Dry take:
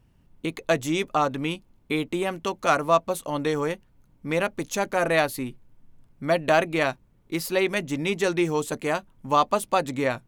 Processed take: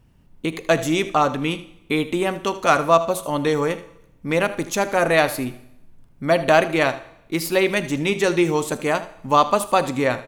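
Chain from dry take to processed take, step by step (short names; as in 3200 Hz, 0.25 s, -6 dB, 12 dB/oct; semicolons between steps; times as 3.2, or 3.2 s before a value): echo 78 ms -16 dB; on a send at -15 dB: reverb RT60 0.80 s, pre-delay 28 ms; on the sum: gain +4.5 dB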